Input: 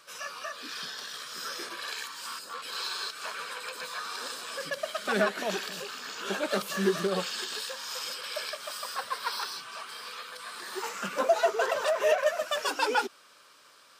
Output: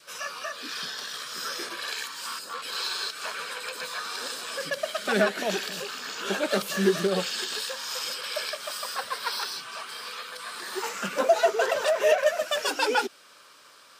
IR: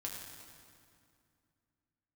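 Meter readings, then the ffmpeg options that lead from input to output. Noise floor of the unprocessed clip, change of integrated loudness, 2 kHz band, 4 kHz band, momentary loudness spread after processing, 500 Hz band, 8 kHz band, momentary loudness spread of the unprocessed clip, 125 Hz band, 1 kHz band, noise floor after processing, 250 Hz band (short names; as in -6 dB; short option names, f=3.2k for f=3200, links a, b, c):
-57 dBFS, +3.5 dB, +3.0 dB, +4.0 dB, 11 LU, +3.5 dB, +4.0 dB, 11 LU, +4.0 dB, +1.5 dB, -53 dBFS, +4.0 dB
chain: -af "adynamicequalizer=threshold=0.00501:dfrequency=1100:dqfactor=2.4:tfrequency=1100:tqfactor=2.4:attack=5:release=100:ratio=0.375:range=3:mode=cutabove:tftype=bell,volume=4dB"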